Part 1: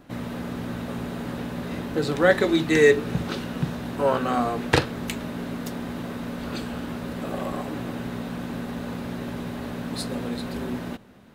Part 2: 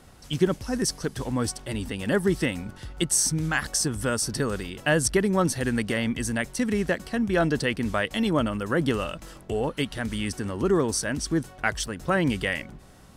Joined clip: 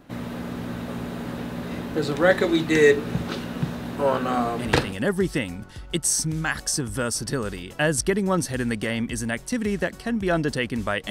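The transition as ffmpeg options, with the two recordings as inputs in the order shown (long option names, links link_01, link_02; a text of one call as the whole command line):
ffmpeg -i cue0.wav -i cue1.wav -filter_complex "[0:a]apad=whole_dur=11.1,atrim=end=11.1,atrim=end=4.93,asetpts=PTS-STARTPTS[link_01];[1:a]atrim=start=1.6:end=8.17,asetpts=PTS-STARTPTS[link_02];[link_01][link_02]acrossfade=duration=0.4:curve1=log:curve2=log" out.wav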